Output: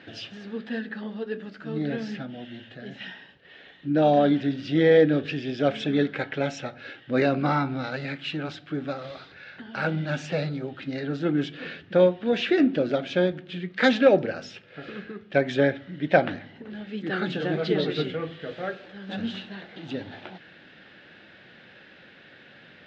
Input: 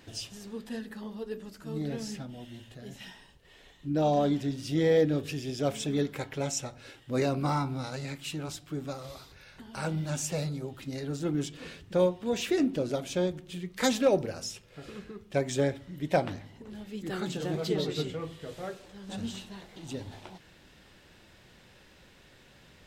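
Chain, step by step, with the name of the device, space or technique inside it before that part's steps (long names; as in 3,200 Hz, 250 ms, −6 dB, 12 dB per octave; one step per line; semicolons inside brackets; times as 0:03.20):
kitchen radio (loudspeaker in its box 180–3,700 Hz, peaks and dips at 400 Hz −3 dB, 1,000 Hz −9 dB, 1,600 Hz +7 dB)
level +7.5 dB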